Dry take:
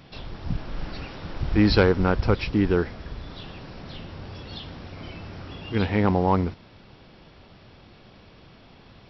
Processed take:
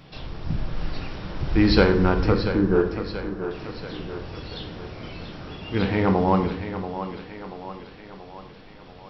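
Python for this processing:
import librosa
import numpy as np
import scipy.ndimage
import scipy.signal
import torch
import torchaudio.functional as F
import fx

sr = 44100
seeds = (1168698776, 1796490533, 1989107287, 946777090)

y = fx.cheby_ripple(x, sr, hz=1700.0, ripple_db=3, at=(2.32, 3.51))
y = fx.echo_thinned(y, sr, ms=684, feedback_pct=56, hz=180.0, wet_db=-9.5)
y = fx.room_shoebox(y, sr, seeds[0], volume_m3=160.0, walls='mixed', distance_m=0.52)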